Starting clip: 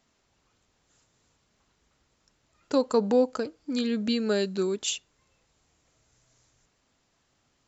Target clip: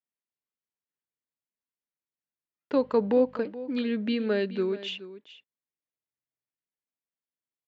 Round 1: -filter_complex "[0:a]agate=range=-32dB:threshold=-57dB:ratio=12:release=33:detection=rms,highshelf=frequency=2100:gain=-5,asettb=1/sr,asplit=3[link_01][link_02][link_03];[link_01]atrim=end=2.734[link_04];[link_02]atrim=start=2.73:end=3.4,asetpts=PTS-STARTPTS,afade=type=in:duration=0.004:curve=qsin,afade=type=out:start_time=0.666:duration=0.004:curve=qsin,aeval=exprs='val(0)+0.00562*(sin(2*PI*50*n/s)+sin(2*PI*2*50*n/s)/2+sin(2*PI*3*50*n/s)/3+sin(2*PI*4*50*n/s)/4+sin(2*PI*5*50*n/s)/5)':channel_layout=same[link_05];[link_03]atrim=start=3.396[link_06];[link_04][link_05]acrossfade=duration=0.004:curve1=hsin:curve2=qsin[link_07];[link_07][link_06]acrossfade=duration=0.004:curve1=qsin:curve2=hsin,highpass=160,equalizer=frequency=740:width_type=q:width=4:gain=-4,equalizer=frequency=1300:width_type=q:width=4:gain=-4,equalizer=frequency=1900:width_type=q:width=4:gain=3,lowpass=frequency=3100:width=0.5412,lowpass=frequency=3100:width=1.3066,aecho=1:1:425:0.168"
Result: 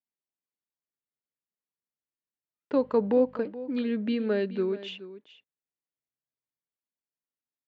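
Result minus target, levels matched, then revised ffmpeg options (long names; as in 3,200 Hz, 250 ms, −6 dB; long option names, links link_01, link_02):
4,000 Hz band −4.5 dB
-filter_complex "[0:a]agate=range=-32dB:threshold=-57dB:ratio=12:release=33:detection=rms,highshelf=frequency=2100:gain=2,asettb=1/sr,asplit=3[link_01][link_02][link_03];[link_01]atrim=end=2.734[link_04];[link_02]atrim=start=2.73:end=3.4,asetpts=PTS-STARTPTS,afade=type=in:duration=0.004:curve=qsin,afade=type=out:start_time=0.666:duration=0.004:curve=qsin,aeval=exprs='val(0)+0.00562*(sin(2*PI*50*n/s)+sin(2*PI*2*50*n/s)/2+sin(2*PI*3*50*n/s)/3+sin(2*PI*4*50*n/s)/4+sin(2*PI*5*50*n/s)/5)':channel_layout=same[link_05];[link_03]atrim=start=3.396[link_06];[link_04][link_05]acrossfade=duration=0.004:curve1=hsin:curve2=qsin[link_07];[link_07][link_06]acrossfade=duration=0.004:curve1=qsin:curve2=hsin,highpass=160,equalizer=frequency=740:width_type=q:width=4:gain=-4,equalizer=frequency=1300:width_type=q:width=4:gain=-4,equalizer=frequency=1900:width_type=q:width=4:gain=3,lowpass=frequency=3100:width=0.5412,lowpass=frequency=3100:width=1.3066,aecho=1:1:425:0.168"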